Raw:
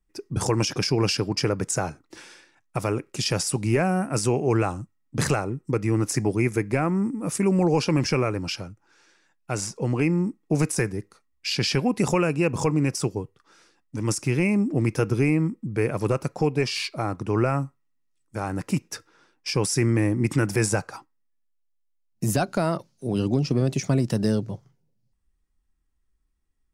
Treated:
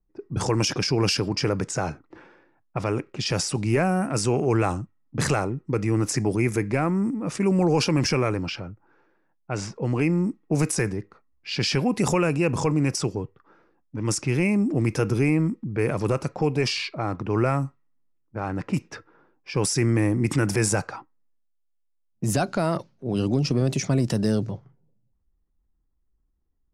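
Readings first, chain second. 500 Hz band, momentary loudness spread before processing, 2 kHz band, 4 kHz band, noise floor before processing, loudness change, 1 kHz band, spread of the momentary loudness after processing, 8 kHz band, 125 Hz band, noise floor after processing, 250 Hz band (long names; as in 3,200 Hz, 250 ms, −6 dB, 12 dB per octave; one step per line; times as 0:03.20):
0.0 dB, 10 LU, +0.5 dB, +0.5 dB, −70 dBFS, 0.0 dB, +0.5 dB, 11 LU, 0.0 dB, 0.0 dB, −70 dBFS, 0.0 dB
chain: low-pass that shuts in the quiet parts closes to 870 Hz, open at −19 dBFS
transient designer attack −1 dB, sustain +5 dB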